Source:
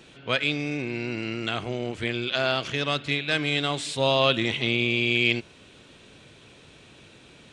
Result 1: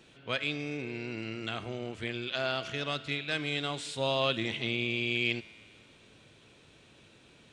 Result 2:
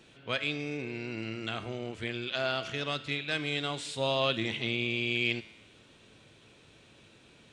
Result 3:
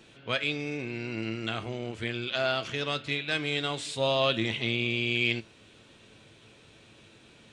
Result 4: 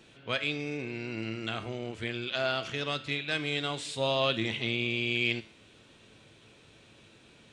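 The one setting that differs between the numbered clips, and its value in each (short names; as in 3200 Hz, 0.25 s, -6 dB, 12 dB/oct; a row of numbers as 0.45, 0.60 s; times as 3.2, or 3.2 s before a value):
resonator, decay: 2.1, 1, 0.18, 0.48 s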